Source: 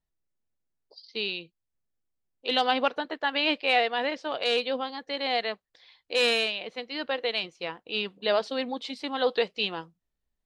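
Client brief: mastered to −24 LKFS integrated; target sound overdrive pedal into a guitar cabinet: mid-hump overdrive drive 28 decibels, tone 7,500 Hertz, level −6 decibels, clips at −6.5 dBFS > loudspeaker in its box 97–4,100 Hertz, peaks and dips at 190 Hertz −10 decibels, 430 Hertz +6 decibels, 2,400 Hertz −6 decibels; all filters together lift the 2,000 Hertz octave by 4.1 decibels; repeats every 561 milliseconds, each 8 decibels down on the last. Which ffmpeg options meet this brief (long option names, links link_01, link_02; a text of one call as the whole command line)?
ffmpeg -i in.wav -filter_complex "[0:a]equalizer=frequency=2000:width_type=o:gain=9,aecho=1:1:561|1122|1683|2244|2805:0.398|0.159|0.0637|0.0255|0.0102,asplit=2[link_01][link_02];[link_02]highpass=frequency=720:poles=1,volume=28dB,asoftclip=type=tanh:threshold=-6.5dB[link_03];[link_01][link_03]amix=inputs=2:normalize=0,lowpass=frequency=7500:poles=1,volume=-6dB,highpass=97,equalizer=frequency=190:width_type=q:width=4:gain=-10,equalizer=frequency=430:width_type=q:width=4:gain=6,equalizer=frequency=2400:width_type=q:width=4:gain=-6,lowpass=frequency=4100:width=0.5412,lowpass=frequency=4100:width=1.3066,volume=-8.5dB" out.wav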